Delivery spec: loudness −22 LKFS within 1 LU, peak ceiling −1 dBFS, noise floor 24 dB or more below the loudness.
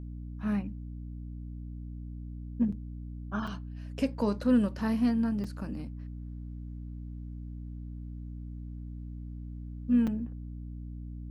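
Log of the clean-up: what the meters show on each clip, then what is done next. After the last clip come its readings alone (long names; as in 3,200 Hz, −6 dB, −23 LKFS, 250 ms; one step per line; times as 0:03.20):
number of dropouts 4; longest dropout 5.1 ms; mains hum 60 Hz; hum harmonics up to 300 Hz; level of the hum −38 dBFS; integrated loudness −34.5 LKFS; sample peak −15.5 dBFS; target loudness −22.0 LKFS
→ repair the gap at 0:02.72/0:03.47/0:05.44/0:10.07, 5.1 ms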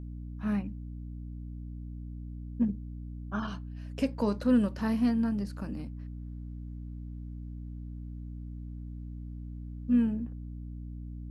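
number of dropouts 0; mains hum 60 Hz; hum harmonics up to 300 Hz; level of the hum −38 dBFS
→ hum removal 60 Hz, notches 5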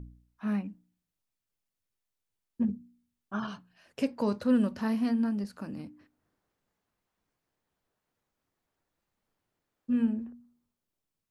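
mains hum none found; integrated loudness −31.0 LKFS; sample peak −16.0 dBFS; target loudness −22.0 LKFS
→ level +9 dB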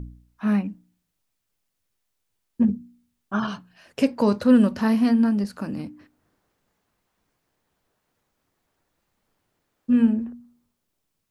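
integrated loudness −22.0 LKFS; sample peak −7.0 dBFS; background noise floor −78 dBFS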